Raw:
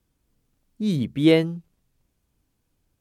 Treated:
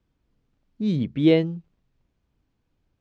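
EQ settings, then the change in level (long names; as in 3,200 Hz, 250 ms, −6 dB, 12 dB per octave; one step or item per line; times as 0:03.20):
dynamic equaliser 1,300 Hz, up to −7 dB, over −38 dBFS, Q 1.1
Gaussian smoothing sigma 1.7 samples
0.0 dB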